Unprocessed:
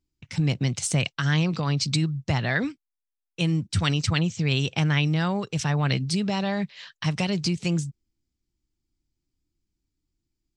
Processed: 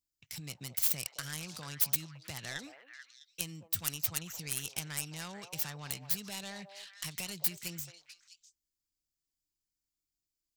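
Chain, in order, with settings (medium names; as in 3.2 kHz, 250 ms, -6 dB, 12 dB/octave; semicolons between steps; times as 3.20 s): tracing distortion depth 0.36 ms; compression 3:1, threshold -24 dBFS, peak gain reduction 6 dB; pre-emphasis filter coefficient 0.9; repeats whose band climbs or falls 218 ms, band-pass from 670 Hz, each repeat 1.4 oct, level -5 dB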